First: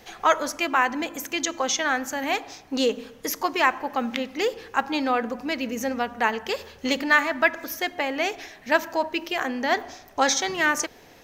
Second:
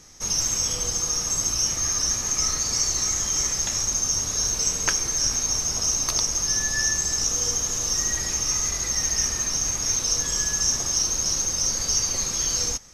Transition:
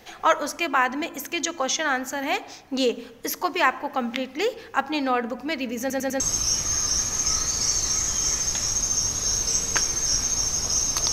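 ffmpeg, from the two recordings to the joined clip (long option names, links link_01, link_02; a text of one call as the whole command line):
ffmpeg -i cue0.wav -i cue1.wav -filter_complex "[0:a]apad=whole_dur=11.12,atrim=end=11.12,asplit=4[link_01][link_02][link_03][link_04];[link_01]atrim=end=5.902[link_05];[link_02]atrim=start=5.798:end=5.902[link_06];[link_03]atrim=start=5.798:end=5.902[link_07];[link_04]atrim=start=5.798:end=5.902[link_08];[1:a]atrim=start=1.318:end=6.24[link_09];[link_05][link_06]acrossfade=duration=0.004:curve1=hsin:curve2=hsin[link_10];[link_10][link_07]acrossfade=duration=0.004:curve1=hsin:curve2=hsin[link_11];[link_11][link_08]acrossfade=duration=0.004:curve1=hsin:curve2=hsin[link_12];[link_12][link_09]acrossfade=duration=0.004:curve1=hsin:curve2=hsin" out.wav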